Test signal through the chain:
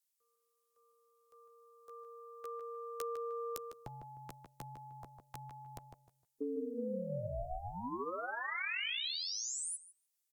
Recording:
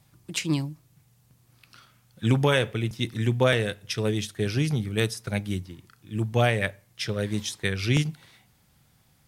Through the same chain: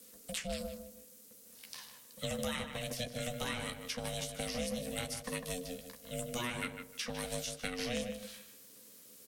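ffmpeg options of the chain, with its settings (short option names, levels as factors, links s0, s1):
-filter_complex "[0:a]equalizer=f=500:t=o:w=0.51:g=-13,bandreject=f=116.9:t=h:w=4,bandreject=f=233.8:t=h:w=4,bandreject=f=350.7:t=h:w=4,acrossover=split=530|2000[s0][s1][s2];[s2]acompressor=threshold=0.00708:ratio=6[s3];[s0][s1][s3]amix=inputs=3:normalize=0,asplit=2[s4][s5];[s5]adelay=13,volume=0.501[s6];[s4][s6]amix=inputs=2:normalize=0,crystalizer=i=3:c=0,aeval=exprs='val(0)*sin(2*PI*360*n/s)':c=same,equalizer=f=7300:t=o:w=1.8:g=4,acrossover=split=380|2600[s7][s8][s9];[s7]acompressor=threshold=0.00891:ratio=4[s10];[s8]acompressor=threshold=0.00891:ratio=4[s11];[s9]acompressor=threshold=0.0126:ratio=4[s12];[s10][s11][s12]amix=inputs=3:normalize=0,asplit=2[s13][s14];[s14]adelay=153,lowpass=f=2400:p=1,volume=0.473,asplit=2[s15][s16];[s16]adelay=153,lowpass=f=2400:p=1,volume=0.25,asplit=2[s17][s18];[s18]adelay=153,lowpass=f=2400:p=1,volume=0.25[s19];[s15][s17][s19]amix=inputs=3:normalize=0[s20];[s13][s20]amix=inputs=2:normalize=0,volume=0.841" -ar 44100 -c:a libvorbis -b:a 192k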